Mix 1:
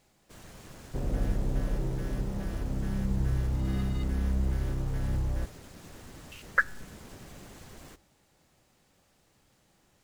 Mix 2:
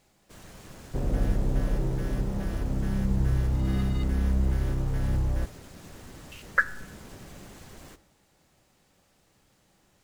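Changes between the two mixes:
speech: send +9.5 dB
background +3.5 dB

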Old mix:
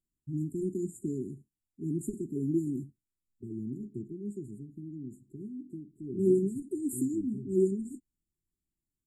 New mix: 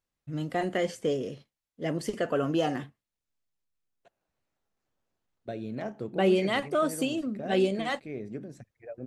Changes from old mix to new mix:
second voice: entry +2.05 s
master: remove linear-phase brick-wall band-stop 410–6,800 Hz

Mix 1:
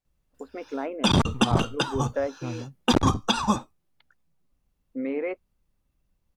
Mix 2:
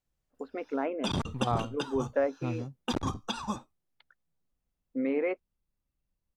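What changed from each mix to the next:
background −11.0 dB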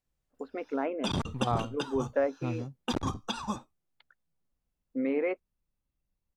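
nothing changed

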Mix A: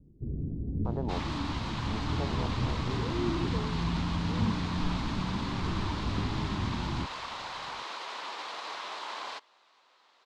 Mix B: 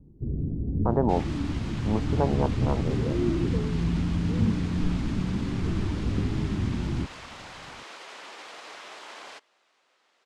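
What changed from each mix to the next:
speech +12.0 dB
first sound +5.0 dB
second sound: add graphic EQ with 15 bands 1,000 Hz −9 dB, 4,000 Hz −7 dB, 10,000 Hz +7 dB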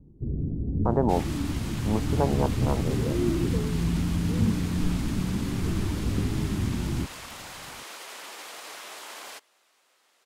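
master: remove high-frequency loss of the air 100 metres

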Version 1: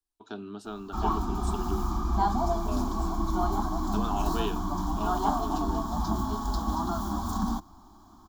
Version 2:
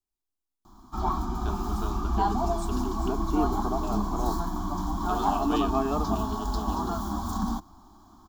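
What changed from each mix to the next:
first voice: entry +1.15 s
second voice: remove formant resonators in series a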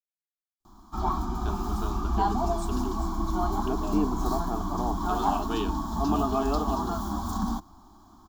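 second voice: entry +0.60 s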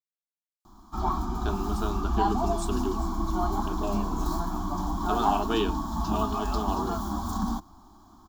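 first voice +5.5 dB
second voice: add high-pass filter 1,200 Hz 12 dB per octave

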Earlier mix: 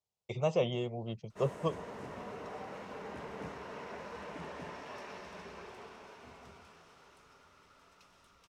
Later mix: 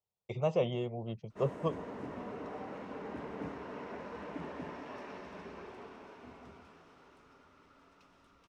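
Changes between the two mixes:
background: add parametric band 280 Hz +8.5 dB 0.59 octaves
master: add high-shelf EQ 4,300 Hz −11.5 dB

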